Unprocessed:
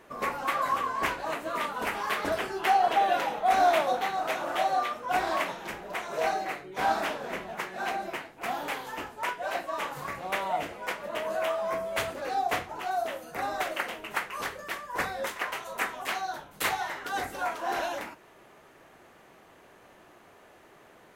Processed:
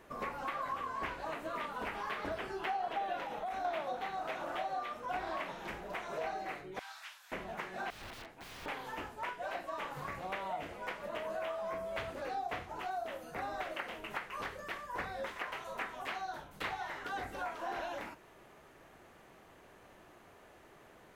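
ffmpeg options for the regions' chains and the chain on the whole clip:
-filter_complex "[0:a]asettb=1/sr,asplit=3[a][b][c];[a]atrim=end=3.234[d];[b]atrim=start=3.23:end=3.65,asetpts=PTS-STARTPTS,afade=t=in:d=0.004:c=qsin,afade=t=out:st=0.416:d=0.004:c=qsin,bandreject=f=4.7k:w=23,acompressor=threshold=-28dB:ratio=6:attack=3.2:release=140:knee=1:detection=peak[e];[c]atrim=start=3.646[f];[d][e]acrossfade=d=0.004:c1=hsin:c2=qsin[g];[g][f]acrossfade=d=0.004:c1=qsin:c2=hsin,asettb=1/sr,asplit=3[h][i][j];[h]atrim=end=6.794[k];[i]atrim=start=6.79:end=7.32,asetpts=PTS-STARTPTS,afade=t=in:d=0.004:c=qsin,afade=t=out:st=0.526:d=0.004:c=qsin,highpass=f=920:w=0.5412,highpass=f=920:w=1.3066,aderivative,acrossover=split=8200[l][m];[m]acompressor=threshold=-57dB:ratio=4:attack=1:release=60[n];[l][n]amix=inputs=2:normalize=0[o];[j]atrim=start=7.316[p];[k][o]acrossfade=d=0.004:c1=hsin:c2=qsin[q];[q][p]acrossfade=d=0.004:c1=qsin:c2=hsin,asettb=1/sr,asplit=3[r][s][t];[r]atrim=end=7.904[u];[s]atrim=start=7.9:end=8.66,asetpts=PTS-STARTPTS,afade=t=in:d=0.004:c=qsin,afade=t=out:st=0.756:d=0.004:c=qsin,lowshelf=f=310:g=-3,bandreject=f=45.13:t=h:w=4,bandreject=f=90.26:t=h:w=4,bandreject=f=135.39:t=h:w=4,bandreject=f=180.52:t=h:w=4,bandreject=f=225.65:t=h:w=4,bandreject=f=270.78:t=h:w=4,bandreject=f=315.91:t=h:w=4,bandreject=f=361.04:t=h:w=4,bandreject=f=406.17:t=h:w=4,bandreject=f=451.3:t=h:w=4,aeval=exprs='(mod(70.8*val(0)+1,2)-1)/70.8':c=same[v];[t]atrim=start=8.656[w];[u][v]acrossfade=d=0.004:c1=hsin:c2=qsin[x];[x][w]acrossfade=d=0.004:c1=qsin:c2=hsin,acrossover=split=4300[y][z];[z]acompressor=threshold=-55dB:ratio=4:attack=1:release=60[aa];[y][aa]amix=inputs=2:normalize=0,lowshelf=f=100:g=9,acompressor=threshold=-34dB:ratio=2.5,volume=-4dB"

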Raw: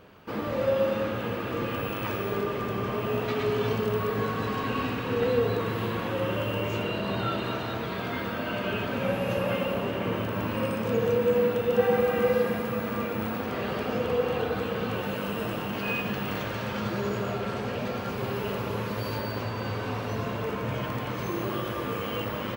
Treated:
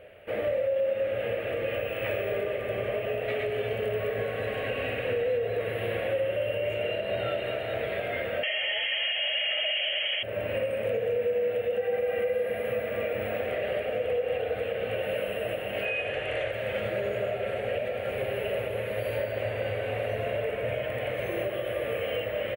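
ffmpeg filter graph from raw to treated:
-filter_complex "[0:a]asettb=1/sr,asplit=3[a][b][c];[a]atrim=end=8.434[d];[b]atrim=start=8.43:end=10.23,asetpts=PTS-STARTPTS,afade=t=in:d=0.004:c=qsin,afade=t=out:st=1.796:d=0.004:c=qsin,aeval=exprs='0.158*sin(PI/2*2.24*val(0)/0.158)':c=same,lowpass=f=2.9k:t=q:w=0.5098,lowpass=f=2.9k:t=q:w=0.6013,lowpass=f=2.9k:t=q:w=0.9,lowpass=f=2.9k:t=q:w=2.563,afreqshift=-3400[e];[c]atrim=start=10.226[f];[d][e]acrossfade=d=0.004:c1=hsin:c2=qsin[g];[g][f]acrossfade=d=0.004:c1=qsin:c2=hsin,asettb=1/sr,asplit=3[h][i][j];[h]atrim=end=15.854[k];[i]atrim=start=15.85:end=16.52,asetpts=PTS-STARTPTS,afade=t=in:d=0.004:c=qsin,afade=t=out:st=0.666:d=0.004:c=qsin,lowpass=f=10k:w=0.5412,lowpass=f=10k:w=1.3066,equalizer=f=190:t=o:w=0.59:g=-13[l];[j]atrim=start=16.516[m];[k][l]acrossfade=d=0.004:c1=hsin:c2=qsin[n];[n][m]acrossfade=d=0.004:c1=qsin:c2=hsin,firequalizer=gain_entry='entry(100,0);entry(160,-9);entry(270,-9);entry(580,14);entry(970,-13);entry(1900,8);entry(2800,5);entry(5100,-20);entry(10000,6);entry(15000,-4)':delay=0.05:min_phase=1,alimiter=limit=-19dB:level=0:latency=1:release=281,volume=-1.5dB"

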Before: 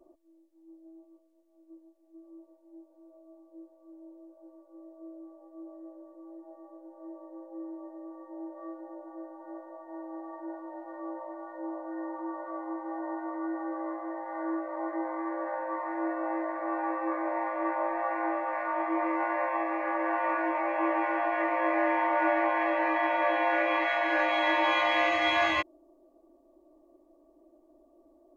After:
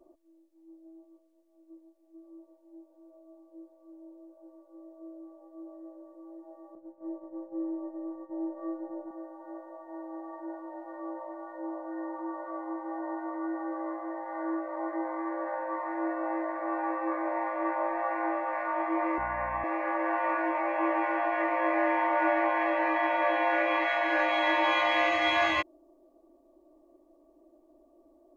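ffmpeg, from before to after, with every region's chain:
-filter_complex "[0:a]asettb=1/sr,asplit=3[a][b][c];[a]atrim=end=6.754[d];[b]atrim=start=6.75:end=9.11,asetpts=PTS-STARTPTS,afade=t=in:d=0.004:c=qsin,afade=t=out:st=2.356:d=0.004:c=qsin,agate=range=-33dB:threshold=-44dB:ratio=3:release=100:detection=peak,lowshelf=f=390:g=11.5[e];[c]atrim=start=9.106[f];[d][e]acrossfade=d=0.004:c1=hsin:c2=qsin[g];[g][f]acrossfade=d=0.004:c1=qsin:c2=hsin,asettb=1/sr,asplit=3[h][i][j];[h]atrim=end=19.184[k];[i]atrim=start=19.18:end=19.64,asetpts=PTS-STARTPTS,afade=t=in:d=0.004:c=qsin,afade=t=out:st=0.456:d=0.004:c=qsin,highpass=700,lowpass=2.3k,aeval=exprs='val(0)+0.00631*(sin(2*PI*60*n/s)+sin(2*PI*2*60*n/s)/2+sin(2*PI*3*60*n/s)/3+sin(2*PI*4*60*n/s)/4+sin(2*PI*5*60*n/s)/5)':c=same[l];[j]atrim=start=19.636[m];[k][l]acrossfade=d=0.004:c1=hsin:c2=qsin[n];[n][m]acrossfade=d=0.004:c1=qsin:c2=hsin"

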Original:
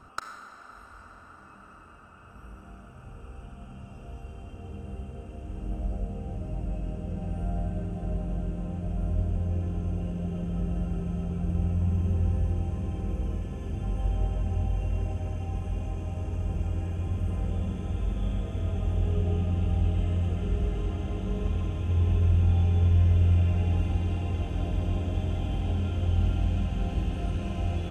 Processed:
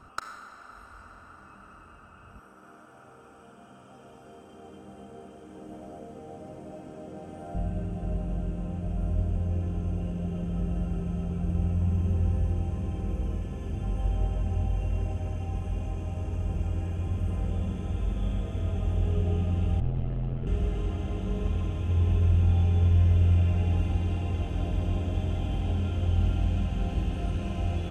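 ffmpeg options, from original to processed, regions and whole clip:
-filter_complex "[0:a]asettb=1/sr,asplit=3[a][b][c];[a]atrim=end=2.394[d];[b]atrim=start=2.39:end=7.55,asetpts=PTS-STARTPTS,afade=t=in:d=0.004:c=qsin,afade=t=out:st=5.156:d=0.004:c=qsin,highpass=270,bandreject=f=2.7k:w=6.6,aecho=1:1:239:0.631,atrim=end_sample=227556[e];[c]atrim=start=7.546[f];[d][e]acrossfade=d=0.004:c1=hsin:c2=qsin[g];[g][f]acrossfade=d=0.004:c1=qsin:c2=hsin,asettb=1/sr,asplit=3[h][i][j];[h]atrim=end=19.804[k];[i]atrim=start=19.8:end=20.47,asetpts=PTS-STARTPTS,afade=t=in:d=0.004:c=qsin,afade=t=out:st=0.666:d=0.004:c=qsin,aeval=exprs='val(0)*sin(2*PI*42*n/s)':c=same,adynamicsmooth=sensitivity=5.5:basefreq=1.7k[l];[j]atrim=start=20.466[m];[k][l]acrossfade=d=0.004:c1=hsin:c2=qsin[n];[n][m]acrossfade=d=0.004:c1=qsin:c2=hsin"

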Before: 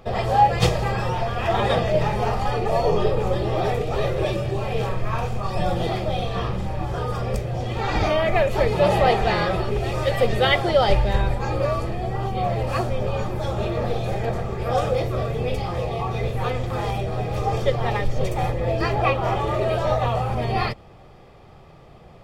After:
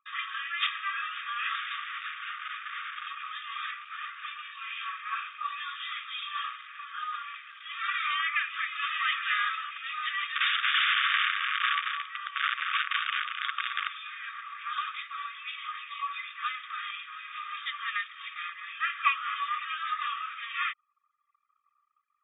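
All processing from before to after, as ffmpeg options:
-filter_complex "[0:a]asettb=1/sr,asplit=3[a][b][c];[a]atrim=end=1.554[d];[b]atrim=start=1.55:end=3.07,asetpts=PTS-STARTPTS,afade=t=in:d=0.004:c=qsin,afade=t=out:st=1.516:d=0.004:c=qsin,bandreject=f=47.01:t=h:w=4,bandreject=f=94.02:t=h:w=4,bandreject=f=141.03:t=h:w=4,bandreject=f=188.04:t=h:w=4,bandreject=f=235.05:t=h:w=4,bandreject=f=282.06:t=h:w=4,bandreject=f=329.07:t=h:w=4,bandreject=f=376.08:t=h:w=4,bandreject=f=423.09:t=h:w=4,bandreject=f=470.1:t=h:w=4,asoftclip=type=hard:threshold=-26.5dB[e];[c]atrim=start=3.066[f];[d][e]acrossfade=d=0.004:c1=hsin:c2=qsin[g];[g][f]acrossfade=d=0.004:c1=qsin:c2=hsin,asettb=1/sr,asplit=3[h][i][j];[h]atrim=end=3.714[k];[i]atrim=start=3.71:end=4.39,asetpts=PTS-STARTPTS,afade=t=in:d=0.004:c=qsin,afade=t=out:st=0.676:d=0.004:c=qsin,highpass=420,aeval=exprs='clip(val(0),-1,0.0299)':c=same,highshelf=f=3.1k:g=-8.5[l];[j]atrim=start=4.386[m];[k][l]acrossfade=d=0.004:c1=hsin:c2=qsin[n];[n][m]acrossfade=d=0.004:c1=qsin:c2=hsin,asettb=1/sr,asplit=3[o][p][q];[o]atrim=end=10.354[r];[p]atrim=start=10.35:end=13.88,asetpts=PTS-STARTPTS,afade=t=in:d=0.004:c=qsin,afade=t=out:st=3.526:d=0.004:c=qsin,aeval=exprs='(mod(6.68*val(0)+1,2)-1)/6.68':c=same,aecho=1:1:223:0.531,atrim=end_sample=155673[s];[q]atrim=start=13.876[t];[r][s]acrossfade=d=0.004:c1=hsin:c2=qsin[u];[u][t]acrossfade=d=0.004:c1=qsin:c2=hsin,afftfilt=real='re*between(b*sr/4096,1100,3700)':imag='im*between(b*sr/4096,1100,3700)':win_size=4096:overlap=0.75,anlmdn=0.0158"

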